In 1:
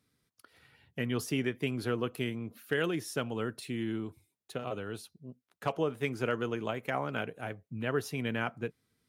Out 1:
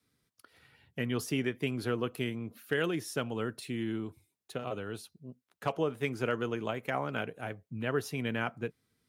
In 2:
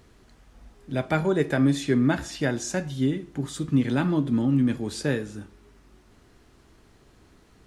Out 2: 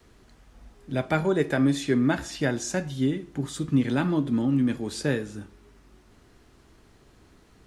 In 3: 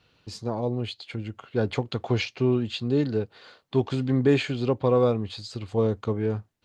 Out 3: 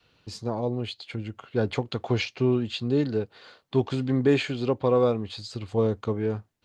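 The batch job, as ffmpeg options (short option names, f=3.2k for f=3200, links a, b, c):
-af "adynamicequalizer=threshold=0.0178:dfrequency=110:dqfactor=0.84:tfrequency=110:tqfactor=0.84:attack=5:release=100:ratio=0.375:range=2:mode=cutabove:tftype=bell"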